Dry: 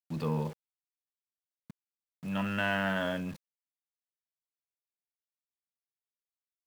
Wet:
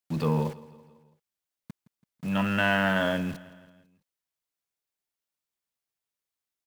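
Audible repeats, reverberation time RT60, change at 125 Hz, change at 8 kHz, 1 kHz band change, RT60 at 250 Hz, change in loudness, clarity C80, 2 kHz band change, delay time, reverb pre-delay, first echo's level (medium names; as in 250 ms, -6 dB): 3, no reverb, +6.0 dB, +6.0 dB, +6.0 dB, no reverb, +6.0 dB, no reverb, +6.0 dB, 166 ms, no reverb, -19.5 dB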